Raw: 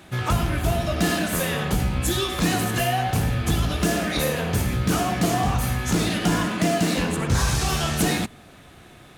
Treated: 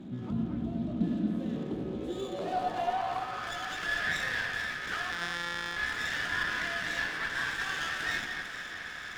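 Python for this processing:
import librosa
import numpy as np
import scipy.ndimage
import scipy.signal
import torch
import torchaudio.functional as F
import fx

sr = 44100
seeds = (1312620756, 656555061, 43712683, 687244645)

p1 = fx.sample_sort(x, sr, block=256, at=(5.12, 5.77))
p2 = fx.peak_eq(p1, sr, hz=3500.0, db=15.0, octaves=0.48)
p3 = fx.over_compress(p2, sr, threshold_db=-34.0, ratio=-1.0)
p4 = p2 + (p3 * librosa.db_to_amplitude(2.0))
p5 = fx.filter_sweep_bandpass(p4, sr, from_hz=230.0, to_hz=1700.0, start_s=1.33, end_s=3.64, q=5.5)
p6 = fx.echo_alternate(p5, sr, ms=224, hz=2500.0, feedback_pct=65, wet_db=-5.0)
y = fx.running_max(p6, sr, window=5)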